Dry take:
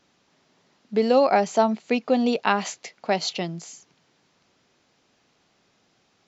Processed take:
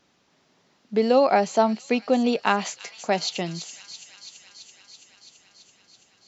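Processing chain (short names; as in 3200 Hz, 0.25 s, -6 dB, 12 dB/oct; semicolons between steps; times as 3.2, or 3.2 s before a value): thin delay 0.333 s, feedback 76%, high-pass 3800 Hz, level -8 dB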